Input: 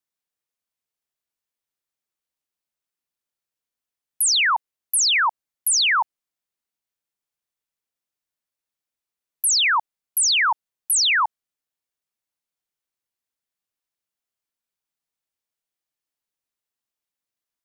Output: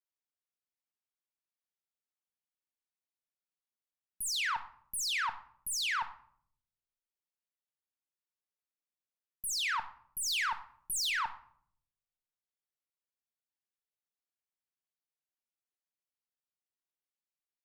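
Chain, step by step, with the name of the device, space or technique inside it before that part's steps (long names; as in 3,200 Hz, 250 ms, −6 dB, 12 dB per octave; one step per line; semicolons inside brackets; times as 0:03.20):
0:10.26–0:11.10: spectral tilt +2 dB per octave
tube preamp driven hard (tube saturation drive 21 dB, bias 0.55; low-shelf EQ 120 Hz −6 dB; high-shelf EQ 5,000 Hz −4 dB)
rectangular room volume 1,000 cubic metres, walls furnished, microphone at 1 metre
level −9 dB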